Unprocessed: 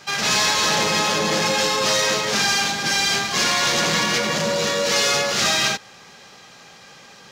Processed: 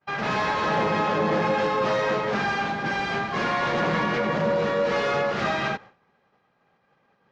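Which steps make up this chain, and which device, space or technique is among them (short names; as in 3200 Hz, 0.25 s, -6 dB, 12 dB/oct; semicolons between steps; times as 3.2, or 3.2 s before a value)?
hearing-loss simulation (LPF 1500 Hz 12 dB/oct; expander -37 dBFS)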